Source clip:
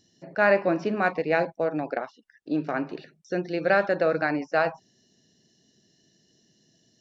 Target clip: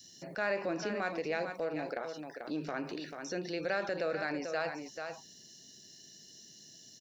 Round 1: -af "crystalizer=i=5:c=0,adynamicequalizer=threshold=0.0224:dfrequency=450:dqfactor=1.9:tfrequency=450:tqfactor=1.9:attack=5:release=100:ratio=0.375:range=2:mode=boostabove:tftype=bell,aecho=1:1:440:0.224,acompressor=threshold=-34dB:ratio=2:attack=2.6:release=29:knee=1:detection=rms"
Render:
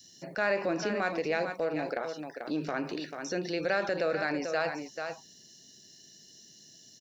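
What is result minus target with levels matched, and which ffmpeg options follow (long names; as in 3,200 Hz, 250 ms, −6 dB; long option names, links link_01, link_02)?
downward compressor: peak gain reduction −4.5 dB
-af "crystalizer=i=5:c=0,adynamicequalizer=threshold=0.0224:dfrequency=450:dqfactor=1.9:tfrequency=450:tqfactor=1.9:attack=5:release=100:ratio=0.375:range=2:mode=boostabove:tftype=bell,aecho=1:1:440:0.224,acompressor=threshold=-43dB:ratio=2:attack=2.6:release=29:knee=1:detection=rms"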